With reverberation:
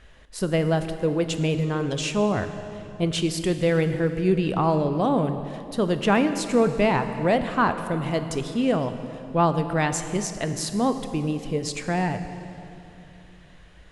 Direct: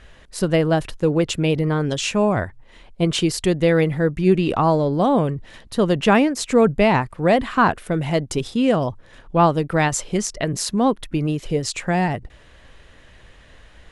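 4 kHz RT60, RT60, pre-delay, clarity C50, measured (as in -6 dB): 2.3 s, 3.0 s, 15 ms, 9.5 dB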